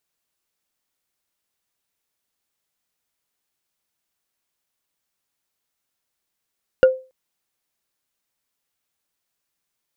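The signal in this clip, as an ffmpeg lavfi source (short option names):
-f lavfi -i "aevalsrc='0.562*pow(10,-3*t/0.31)*sin(2*PI*519*t)+0.178*pow(10,-3*t/0.092)*sin(2*PI*1430.9*t)+0.0562*pow(10,-3*t/0.041)*sin(2*PI*2804.7*t)+0.0178*pow(10,-3*t/0.022)*sin(2*PI*4636.2*t)+0.00562*pow(10,-3*t/0.014)*sin(2*PI*6923.5*t)':d=0.28:s=44100"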